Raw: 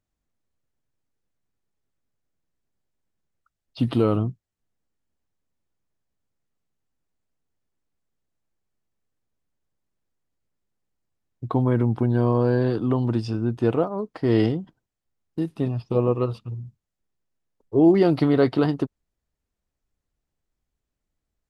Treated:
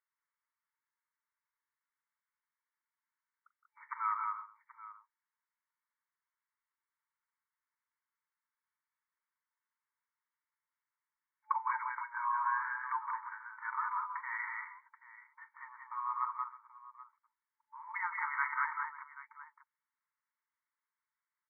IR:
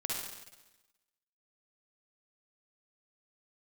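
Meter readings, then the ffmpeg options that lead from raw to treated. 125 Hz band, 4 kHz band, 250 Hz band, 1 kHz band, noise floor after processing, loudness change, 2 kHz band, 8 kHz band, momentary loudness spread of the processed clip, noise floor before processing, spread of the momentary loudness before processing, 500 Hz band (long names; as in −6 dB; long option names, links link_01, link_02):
below −40 dB, below −40 dB, below −40 dB, −0.5 dB, below −85 dBFS, −14.5 dB, +1.5 dB, can't be measured, 21 LU, −83 dBFS, 12 LU, below −40 dB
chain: -filter_complex "[0:a]afftfilt=real='re*between(b*sr/4096,870,2300)':imag='im*between(b*sr/4096,870,2300)':win_size=4096:overlap=0.75,asplit=2[link_01][link_02];[link_02]aecho=0:1:41|165|188|316|781:0.15|0.299|0.668|0.133|0.15[link_03];[link_01][link_03]amix=inputs=2:normalize=0"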